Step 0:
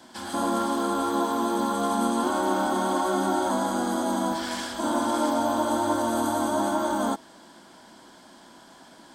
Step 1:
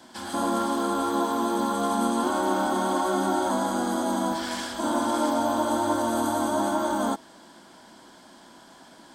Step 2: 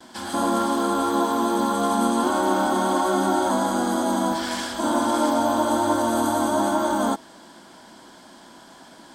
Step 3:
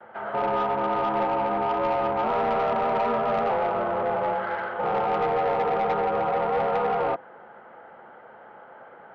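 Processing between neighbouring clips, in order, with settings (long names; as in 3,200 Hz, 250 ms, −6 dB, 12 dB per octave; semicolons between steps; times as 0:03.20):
no processing that can be heard
noise gate with hold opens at −46 dBFS; level +3.5 dB
single-sideband voice off tune −140 Hz 480–2,200 Hz; soft clipping −22 dBFS, distortion −14 dB; level +3 dB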